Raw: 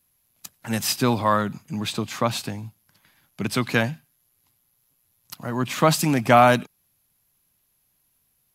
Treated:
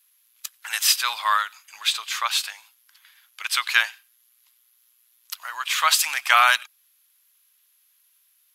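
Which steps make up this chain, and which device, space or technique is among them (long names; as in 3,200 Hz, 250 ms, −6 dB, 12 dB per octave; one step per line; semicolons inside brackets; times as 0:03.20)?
headphones lying on a table (high-pass filter 1,200 Hz 24 dB per octave; parametric band 3,300 Hz +4 dB 0.51 octaves)
level +5.5 dB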